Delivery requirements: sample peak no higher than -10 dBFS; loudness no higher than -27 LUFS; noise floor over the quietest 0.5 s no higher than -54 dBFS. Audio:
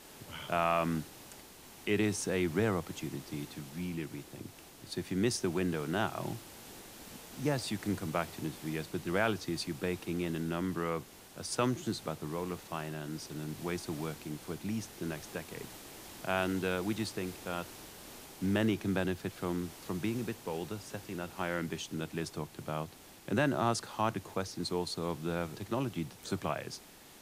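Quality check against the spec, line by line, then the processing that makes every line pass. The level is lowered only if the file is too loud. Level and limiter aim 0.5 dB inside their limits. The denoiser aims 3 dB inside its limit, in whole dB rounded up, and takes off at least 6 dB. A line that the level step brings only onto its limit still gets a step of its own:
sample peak -16.5 dBFS: pass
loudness -35.5 LUFS: pass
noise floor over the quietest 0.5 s -53 dBFS: fail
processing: noise reduction 6 dB, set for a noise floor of -53 dBFS

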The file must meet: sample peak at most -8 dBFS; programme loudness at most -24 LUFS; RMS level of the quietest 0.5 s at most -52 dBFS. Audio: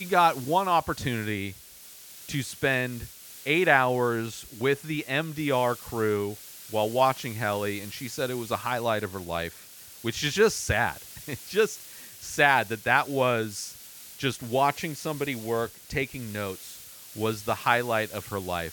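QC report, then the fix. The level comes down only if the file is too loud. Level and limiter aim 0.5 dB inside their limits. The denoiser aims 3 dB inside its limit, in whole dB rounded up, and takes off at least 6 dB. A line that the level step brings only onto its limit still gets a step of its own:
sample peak -6.0 dBFS: fail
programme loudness -27.0 LUFS: pass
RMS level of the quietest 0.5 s -48 dBFS: fail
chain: noise reduction 7 dB, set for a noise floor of -48 dBFS; peak limiter -8.5 dBFS

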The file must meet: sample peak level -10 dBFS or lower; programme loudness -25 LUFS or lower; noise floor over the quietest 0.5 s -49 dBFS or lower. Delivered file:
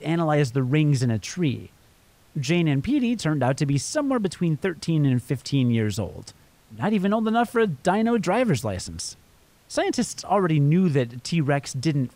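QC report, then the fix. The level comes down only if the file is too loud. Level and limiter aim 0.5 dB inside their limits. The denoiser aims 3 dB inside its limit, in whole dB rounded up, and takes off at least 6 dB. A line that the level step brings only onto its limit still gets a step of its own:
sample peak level -9.5 dBFS: fail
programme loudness -23.5 LUFS: fail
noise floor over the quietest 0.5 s -56 dBFS: pass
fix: trim -2 dB

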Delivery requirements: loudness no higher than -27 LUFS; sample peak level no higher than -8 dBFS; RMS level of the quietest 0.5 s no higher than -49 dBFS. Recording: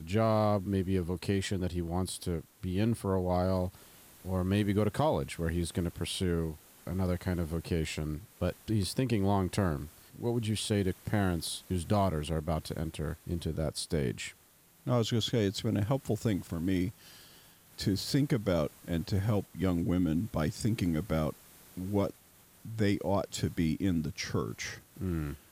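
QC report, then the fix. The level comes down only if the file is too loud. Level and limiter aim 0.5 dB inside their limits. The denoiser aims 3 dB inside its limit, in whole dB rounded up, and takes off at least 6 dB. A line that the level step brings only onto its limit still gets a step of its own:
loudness -32.5 LUFS: pass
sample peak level -17.0 dBFS: pass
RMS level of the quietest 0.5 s -62 dBFS: pass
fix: none needed

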